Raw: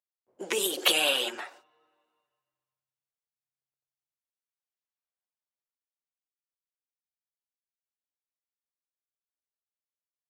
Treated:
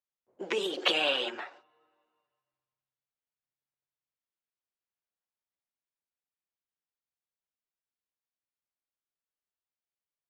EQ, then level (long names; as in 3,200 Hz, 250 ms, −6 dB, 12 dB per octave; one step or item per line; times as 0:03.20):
high-frequency loss of the air 170 metres
0.0 dB